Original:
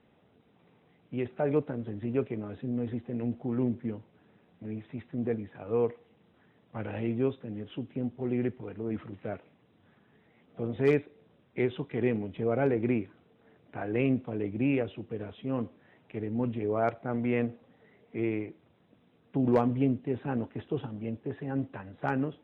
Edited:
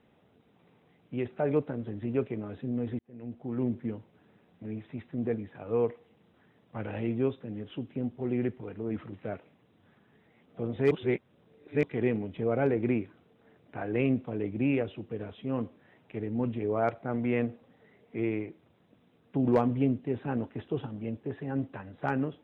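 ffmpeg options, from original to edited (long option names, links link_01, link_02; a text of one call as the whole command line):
ffmpeg -i in.wav -filter_complex "[0:a]asplit=4[link_01][link_02][link_03][link_04];[link_01]atrim=end=2.99,asetpts=PTS-STARTPTS,afade=type=out:start_time=2.986:duration=0.004:curve=hsin[link_05];[link_02]atrim=start=2.99:end=10.912,asetpts=PTS-STARTPTS,afade=type=in:duration=0.75[link_06];[link_03]atrim=start=10.908:end=11.832,asetpts=PTS-STARTPTS,areverse[link_07];[link_04]atrim=start=11.828[link_08];[link_05][link_06]concat=n=2:v=0:a=1[link_09];[link_09][link_07]acrossfade=duration=0.004:curve1=hsin:curve2=hsin[link_10];[link_10][link_08]acrossfade=duration=0.004:curve1=hsin:curve2=hsin" out.wav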